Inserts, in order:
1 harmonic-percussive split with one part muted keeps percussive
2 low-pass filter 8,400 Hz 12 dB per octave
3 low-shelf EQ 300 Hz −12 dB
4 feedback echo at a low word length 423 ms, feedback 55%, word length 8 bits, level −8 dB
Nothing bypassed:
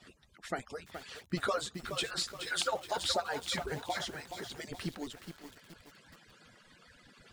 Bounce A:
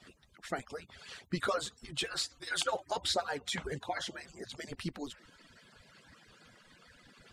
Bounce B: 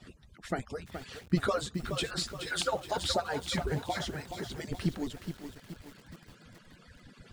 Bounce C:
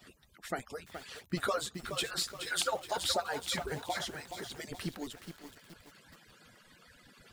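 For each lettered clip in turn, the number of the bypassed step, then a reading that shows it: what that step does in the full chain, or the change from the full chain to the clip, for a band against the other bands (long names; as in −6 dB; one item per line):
4, change in momentary loudness spread −4 LU
3, 125 Hz band +8.5 dB
2, 8 kHz band +2.0 dB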